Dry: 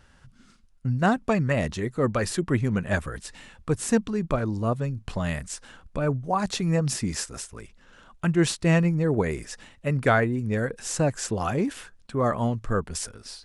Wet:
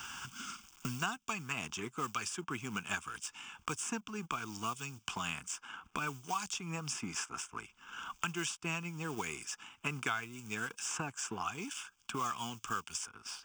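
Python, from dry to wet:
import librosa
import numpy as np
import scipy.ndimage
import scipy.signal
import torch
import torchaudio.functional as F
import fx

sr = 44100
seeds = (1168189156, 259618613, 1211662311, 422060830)

y = fx.law_mismatch(x, sr, coded='A')
y = fx.highpass(y, sr, hz=1500.0, slope=6)
y = fx.fixed_phaser(y, sr, hz=2800.0, stages=8)
y = fx.band_squash(y, sr, depth_pct=100)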